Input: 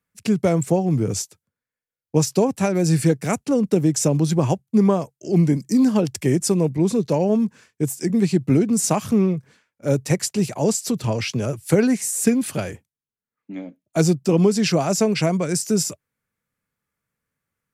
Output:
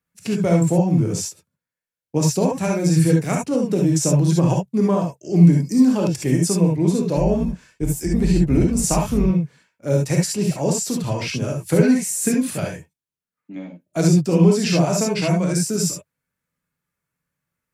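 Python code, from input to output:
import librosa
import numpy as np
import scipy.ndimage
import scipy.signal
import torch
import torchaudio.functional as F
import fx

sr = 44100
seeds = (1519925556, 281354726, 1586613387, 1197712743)

y = fx.octave_divider(x, sr, octaves=2, level_db=-4.0, at=(7.16, 9.26))
y = fx.rev_gated(y, sr, seeds[0], gate_ms=90, shape='rising', drr_db=-0.5)
y = F.gain(torch.from_numpy(y), -3.0).numpy()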